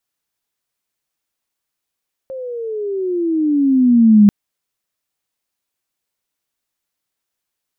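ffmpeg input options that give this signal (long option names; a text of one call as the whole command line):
ffmpeg -f lavfi -i "aevalsrc='pow(10,(-4+21*(t/1.99-1))/20)*sin(2*PI*537*1.99/(-17*log(2)/12)*(exp(-17*log(2)/12*t/1.99)-1))':duration=1.99:sample_rate=44100" out.wav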